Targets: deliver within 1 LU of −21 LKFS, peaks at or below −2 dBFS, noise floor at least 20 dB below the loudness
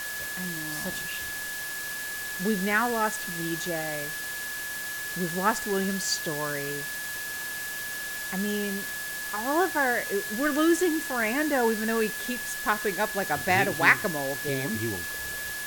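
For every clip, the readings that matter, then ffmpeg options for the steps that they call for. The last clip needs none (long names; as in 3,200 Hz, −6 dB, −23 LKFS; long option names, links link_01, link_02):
interfering tone 1,700 Hz; level of the tone −34 dBFS; background noise floor −35 dBFS; target noise floor −48 dBFS; integrated loudness −27.5 LKFS; sample peak −4.5 dBFS; target loudness −21.0 LKFS
→ -af "bandreject=frequency=1700:width=30"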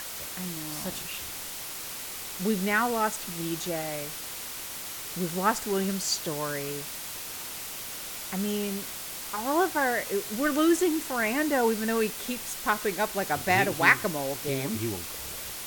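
interfering tone none found; background noise floor −38 dBFS; target noise floor −49 dBFS
→ -af "afftdn=noise_reduction=11:noise_floor=-38"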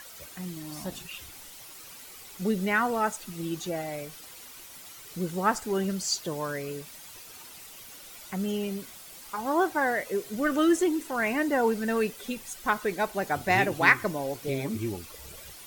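background noise floor −47 dBFS; target noise floor −49 dBFS
→ -af "afftdn=noise_reduction=6:noise_floor=-47"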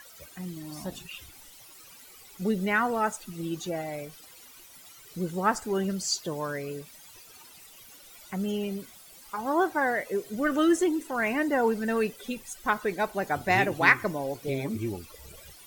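background noise floor −51 dBFS; integrated loudness −28.5 LKFS; sample peak −5.5 dBFS; target loudness −21.0 LKFS
→ -af "volume=7.5dB,alimiter=limit=-2dB:level=0:latency=1"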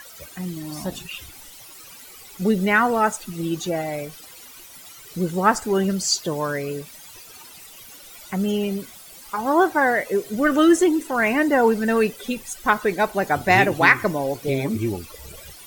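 integrated loudness −21.0 LKFS; sample peak −2.0 dBFS; background noise floor −44 dBFS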